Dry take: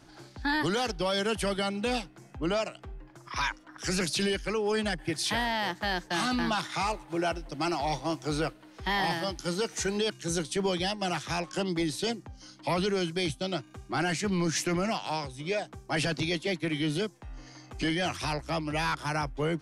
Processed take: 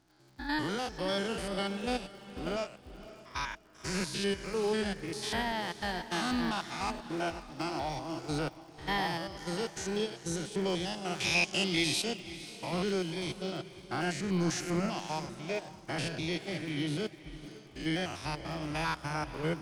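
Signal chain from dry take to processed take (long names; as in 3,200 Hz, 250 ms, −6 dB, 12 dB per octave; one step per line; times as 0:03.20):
spectrum averaged block by block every 100 ms
0:11.20–0:12.02: high shelf with overshoot 1,900 Hz +9 dB, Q 3
surface crackle 62 per second −41 dBFS
on a send: feedback delay with all-pass diffusion 536 ms, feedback 42%, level −10 dB
on the sum: expander for the loud parts 1.5 to 1, over −52 dBFS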